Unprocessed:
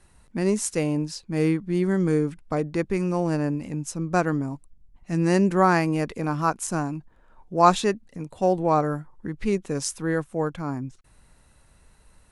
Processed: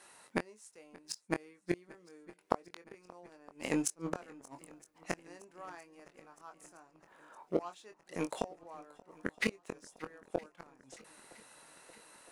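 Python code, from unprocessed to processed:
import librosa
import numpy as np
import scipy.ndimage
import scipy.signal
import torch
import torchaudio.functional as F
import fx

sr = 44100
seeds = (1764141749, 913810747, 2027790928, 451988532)

y = scipy.signal.sosfilt(scipy.signal.butter(2, 490.0, 'highpass', fs=sr, output='sos'), x)
y = fx.leveller(y, sr, passes=1)
y = fx.gate_flip(y, sr, shuts_db=-23.0, range_db=-38)
y = fx.doubler(y, sr, ms=23.0, db=-8.0)
y = fx.echo_swing(y, sr, ms=965, ratio=1.5, feedback_pct=60, wet_db=-22.5)
y = y * librosa.db_to_amplitude(6.5)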